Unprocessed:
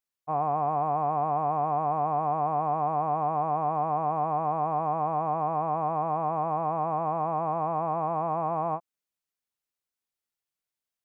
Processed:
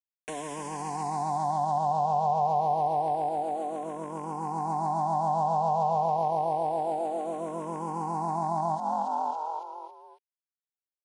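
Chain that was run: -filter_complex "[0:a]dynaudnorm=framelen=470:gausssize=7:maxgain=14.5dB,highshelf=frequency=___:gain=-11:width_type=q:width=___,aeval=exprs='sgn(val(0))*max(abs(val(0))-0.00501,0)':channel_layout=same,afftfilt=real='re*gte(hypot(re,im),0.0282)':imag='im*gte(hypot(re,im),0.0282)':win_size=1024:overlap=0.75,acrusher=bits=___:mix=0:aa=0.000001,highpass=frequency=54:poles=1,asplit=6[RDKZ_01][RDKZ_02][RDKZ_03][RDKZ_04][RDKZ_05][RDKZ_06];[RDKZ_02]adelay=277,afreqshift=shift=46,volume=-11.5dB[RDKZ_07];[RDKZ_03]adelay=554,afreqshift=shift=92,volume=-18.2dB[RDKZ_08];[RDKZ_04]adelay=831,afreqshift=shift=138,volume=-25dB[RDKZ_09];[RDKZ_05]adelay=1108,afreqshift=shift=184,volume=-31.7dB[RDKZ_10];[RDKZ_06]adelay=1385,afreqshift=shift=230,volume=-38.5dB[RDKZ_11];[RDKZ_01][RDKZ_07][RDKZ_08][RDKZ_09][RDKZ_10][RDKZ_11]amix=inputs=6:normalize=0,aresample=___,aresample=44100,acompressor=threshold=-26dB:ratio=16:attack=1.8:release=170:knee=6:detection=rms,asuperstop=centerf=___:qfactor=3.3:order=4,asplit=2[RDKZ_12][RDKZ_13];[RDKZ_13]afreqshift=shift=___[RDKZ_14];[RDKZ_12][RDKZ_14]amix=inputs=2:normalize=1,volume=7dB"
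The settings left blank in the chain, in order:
1600, 1.5, 5, 22050, 1200, -0.28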